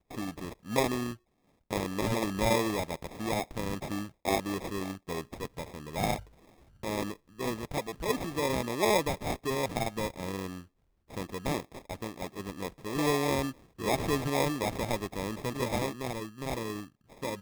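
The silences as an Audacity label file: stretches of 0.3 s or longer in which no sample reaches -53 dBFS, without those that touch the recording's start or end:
1.160000	1.710000	silence
10.660000	11.090000	silence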